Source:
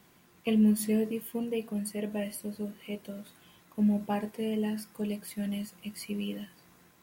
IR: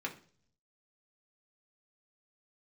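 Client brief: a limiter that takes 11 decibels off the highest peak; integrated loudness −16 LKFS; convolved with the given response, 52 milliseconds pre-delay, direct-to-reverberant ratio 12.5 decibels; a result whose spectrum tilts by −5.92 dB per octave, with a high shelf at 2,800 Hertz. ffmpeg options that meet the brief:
-filter_complex "[0:a]highshelf=frequency=2800:gain=-5,alimiter=level_in=3.5dB:limit=-24dB:level=0:latency=1,volume=-3.5dB,asplit=2[link_01][link_02];[1:a]atrim=start_sample=2205,adelay=52[link_03];[link_02][link_03]afir=irnorm=-1:irlink=0,volume=-15dB[link_04];[link_01][link_04]amix=inputs=2:normalize=0,volume=21dB"

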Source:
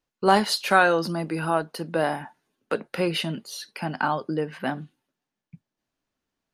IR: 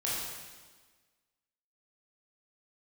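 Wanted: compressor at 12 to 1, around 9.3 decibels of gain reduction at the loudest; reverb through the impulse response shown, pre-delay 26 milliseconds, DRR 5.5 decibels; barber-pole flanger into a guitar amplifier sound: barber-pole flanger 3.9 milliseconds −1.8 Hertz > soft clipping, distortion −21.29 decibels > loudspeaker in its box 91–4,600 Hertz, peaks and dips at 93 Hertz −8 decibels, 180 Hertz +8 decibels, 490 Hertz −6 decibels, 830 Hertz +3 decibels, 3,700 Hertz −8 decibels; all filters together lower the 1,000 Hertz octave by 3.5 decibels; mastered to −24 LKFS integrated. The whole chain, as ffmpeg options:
-filter_complex "[0:a]equalizer=frequency=1000:width_type=o:gain=-7,acompressor=threshold=-24dB:ratio=12,asplit=2[link_01][link_02];[1:a]atrim=start_sample=2205,adelay=26[link_03];[link_02][link_03]afir=irnorm=-1:irlink=0,volume=-12dB[link_04];[link_01][link_04]amix=inputs=2:normalize=0,asplit=2[link_05][link_06];[link_06]adelay=3.9,afreqshift=-1.8[link_07];[link_05][link_07]amix=inputs=2:normalize=1,asoftclip=threshold=-20.5dB,highpass=91,equalizer=frequency=93:width_type=q:width=4:gain=-8,equalizer=frequency=180:width_type=q:width=4:gain=8,equalizer=frequency=490:width_type=q:width=4:gain=-6,equalizer=frequency=830:width_type=q:width=4:gain=3,equalizer=frequency=3700:width_type=q:width=4:gain=-8,lowpass=frequency=4600:width=0.5412,lowpass=frequency=4600:width=1.3066,volume=9.5dB"

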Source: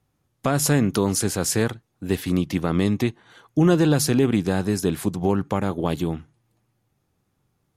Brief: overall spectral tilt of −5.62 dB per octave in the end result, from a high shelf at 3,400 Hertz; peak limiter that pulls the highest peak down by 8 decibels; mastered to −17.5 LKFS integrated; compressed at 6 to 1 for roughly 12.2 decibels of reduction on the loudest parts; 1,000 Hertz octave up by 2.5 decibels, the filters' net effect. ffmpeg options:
ffmpeg -i in.wav -af "equalizer=frequency=1000:width_type=o:gain=4,highshelf=frequency=3400:gain=-6,acompressor=threshold=-27dB:ratio=6,volume=16dB,alimiter=limit=-5dB:level=0:latency=1" out.wav

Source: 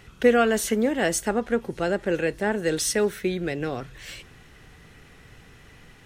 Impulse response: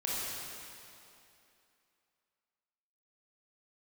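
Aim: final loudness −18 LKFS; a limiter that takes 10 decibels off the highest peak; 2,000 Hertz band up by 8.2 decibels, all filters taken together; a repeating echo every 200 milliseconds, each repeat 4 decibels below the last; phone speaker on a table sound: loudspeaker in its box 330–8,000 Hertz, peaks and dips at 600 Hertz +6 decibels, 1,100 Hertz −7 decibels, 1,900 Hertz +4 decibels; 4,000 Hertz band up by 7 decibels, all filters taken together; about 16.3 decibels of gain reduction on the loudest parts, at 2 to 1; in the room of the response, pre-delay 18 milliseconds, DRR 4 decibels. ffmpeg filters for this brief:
-filter_complex "[0:a]equalizer=frequency=2000:width_type=o:gain=6,equalizer=frequency=4000:width_type=o:gain=7.5,acompressor=threshold=-42dB:ratio=2,alimiter=level_in=5dB:limit=-24dB:level=0:latency=1,volume=-5dB,aecho=1:1:200|400|600|800|1000|1200|1400|1600|1800:0.631|0.398|0.25|0.158|0.0994|0.0626|0.0394|0.0249|0.0157,asplit=2[link_01][link_02];[1:a]atrim=start_sample=2205,adelay=18[link_03];[link_02][link_03]afir=irnorm=-1:irlink=0,volume=-10dB[link_04];[link_01][link_04]amix=inputs=2:normalize=0,highpass=frequency=330:width=0.5412,highpass=frequency=330:width=1.3066,equalizer=frequency=600:width_type=q:width=4:gain=6,equalizer=frequency=1100:width_type=q:width=4:gain=-7,equalizer=frequency=1900:width_type=q:width=4:gain=4,lowpass=frequency=8000:width=0.5412,lowpass=frequency=8000:width=1.3066,volume=18.5dB"

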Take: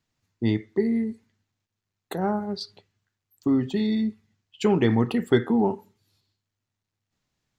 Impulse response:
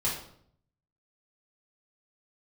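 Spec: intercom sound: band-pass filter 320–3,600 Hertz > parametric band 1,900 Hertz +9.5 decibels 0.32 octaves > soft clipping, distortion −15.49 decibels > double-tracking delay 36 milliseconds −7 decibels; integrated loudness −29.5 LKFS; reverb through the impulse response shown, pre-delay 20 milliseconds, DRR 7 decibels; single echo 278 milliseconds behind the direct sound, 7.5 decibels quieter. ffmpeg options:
-filter_complex "[0:a]aecho=1:1:278:0.422,asplit=2[link_01][link_02];[1:a]atrim=start_sample=2205,adelay=20[link_03];[link_02][link_03]afir=irnorm=-1:irlink=0,volume=-14.5dB[link_04];[link_01][link_04]amix=inputs=2:normalize=0,highpass=320,lowpass=3600,equalizer=frequency=1900:width_type=o:width=0.32:gain=9.5,asoftclip=threshold=-17dB,asplit=2[link_05][link_06];[link_06]adelay=36,volume=-7dB[link_07];[link_05][link_07]amix=inputs=2:normalize=0,volume=-1dB"

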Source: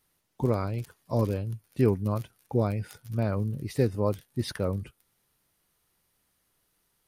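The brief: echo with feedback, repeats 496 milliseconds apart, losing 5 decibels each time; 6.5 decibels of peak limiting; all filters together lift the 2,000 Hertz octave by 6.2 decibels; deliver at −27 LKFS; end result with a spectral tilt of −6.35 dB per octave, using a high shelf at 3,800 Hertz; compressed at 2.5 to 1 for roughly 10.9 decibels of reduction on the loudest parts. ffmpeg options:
ffmpeg -i in.wav -af "equalizer=frequency=2000:width_type=o:gain=7,highshelf=frequency=3800:gain=3.5,acompressor=threshold=-35dB:ratio=2.5,alimiter=level_in=4dB:limit=-24dB:level=0:latency=1,volume=-4dB,aecho=1:1:496|992|1488|1984|2480|2976|3472:0.562|0.315|0.176|0.0988|0.0553|0.031|0.0173,volume=12dB" out.wav

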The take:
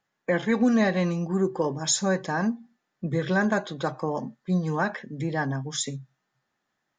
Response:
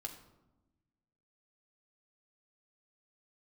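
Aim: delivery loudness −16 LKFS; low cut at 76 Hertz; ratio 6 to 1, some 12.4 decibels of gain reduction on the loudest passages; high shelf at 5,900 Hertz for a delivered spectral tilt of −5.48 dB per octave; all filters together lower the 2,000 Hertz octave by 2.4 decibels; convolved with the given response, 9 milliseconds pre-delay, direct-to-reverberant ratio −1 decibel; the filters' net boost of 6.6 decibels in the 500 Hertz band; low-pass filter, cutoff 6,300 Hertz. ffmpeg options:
-filter_complex "[0:a]highpass=76,lowpass=6300,equalizer=frequency=500:width_type=o:gain=8,equalizer=frequency=2000:width_type=o:gain=-3,highshelf=frequency=5900:gain=-9,acompressor=threshold=-28dB:ratio=6,asplit=2[link_01][link_02];[1:a]atrim=start_sample=2205,adelay=9[link_03];[link_02][link_03]afir=irnorm=-1:irlink=0,volume=3.5dB[link_04];[link_01][link_04]amix=inputs=2:normalize=0,volume=13.5dB"

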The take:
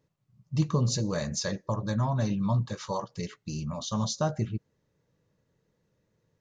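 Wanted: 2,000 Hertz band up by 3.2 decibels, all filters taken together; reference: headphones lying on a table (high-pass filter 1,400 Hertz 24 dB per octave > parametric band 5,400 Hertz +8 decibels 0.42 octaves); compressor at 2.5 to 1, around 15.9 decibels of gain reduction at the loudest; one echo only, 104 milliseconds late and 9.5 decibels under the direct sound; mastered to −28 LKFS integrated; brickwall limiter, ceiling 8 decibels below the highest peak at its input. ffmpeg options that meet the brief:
ffmpeg -i in.wav -af "equalizer=frequency=2000:width_type=o:gain=5,acompressor=threshold=-46dB:ratio=2.5,alimiter=level_in=12dB:limit=-24dB:level=0:latency=1,volume=-12dB,highpass=frequency=1400:width=0.5412,highpass=frequency=1400:width=1.3066,equalizer=frequency=5400:width_type=o:width=0.42:gain=8,aecho=1:1:104:0.335,volume=20dB" out.wav

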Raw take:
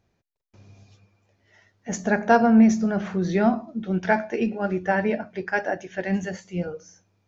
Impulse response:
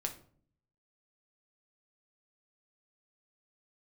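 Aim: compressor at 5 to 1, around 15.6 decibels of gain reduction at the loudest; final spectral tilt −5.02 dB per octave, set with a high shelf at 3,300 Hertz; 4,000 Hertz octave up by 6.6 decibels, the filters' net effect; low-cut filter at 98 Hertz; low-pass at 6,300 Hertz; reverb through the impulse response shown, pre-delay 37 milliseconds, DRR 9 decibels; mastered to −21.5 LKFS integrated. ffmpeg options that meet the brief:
-filter_complex "[0:a]highpass=98,lowpass=6300,highshelf=frequency=3300:gain=9,equalizer=frequency=4000:width_type=o:gain=3,acompressor=threshold=-29dB:ratio=5,asplit=2[link_01][link_02];[1:a]atrim=start_sample=2205,adelay=37[link_03];[link_02][link_03]afir=irnorm=-1:irlink=0,volume=-9.5dB[link_04];[link_01][link_04]amix=inputs=2:normalize=0,volume=11.5dB"

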